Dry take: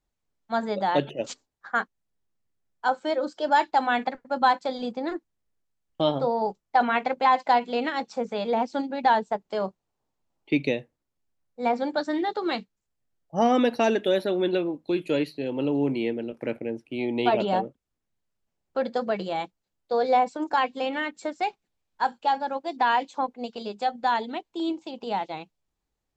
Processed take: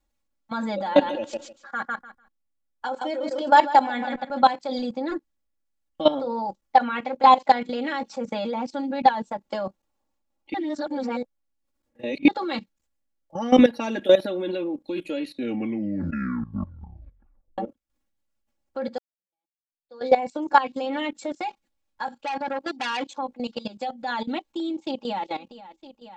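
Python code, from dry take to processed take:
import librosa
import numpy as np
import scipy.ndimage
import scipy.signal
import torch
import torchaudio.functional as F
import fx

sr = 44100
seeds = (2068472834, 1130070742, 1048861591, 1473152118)

y = fx.echo_feedback(x, sr, ms=149, feedback_pct=25, wet_db=-9, at=(0.85, 4.47), fade=0.02)
y = fx.transformer_sat(y, sr, knee_hz=2300.0, at=(22.13, 23.17))
y = fx.echo_throw(y, sr, start_s=24.76, length_s=0.51, ms=480, feedback_pct=65, wet_db=-12.5)
y = fx.edit(y, sr, fx.reverse_span(start_s=10.54, length_s=1.74),
    fx.tape_stop(start_s=15.22, length_s=2.36),
    fx.fade_in_span(start_s=18.98, length_s=1.15, curve='exp'), tone=tone)
y = y + 0.99 * np.pad(y, (int(3.6 * sr / 1000.0), 0))[:len(y)]
y = fx.level_steps(y, sr, step_db=16)
y = y * 10.0 ** (4.5 / 20.0)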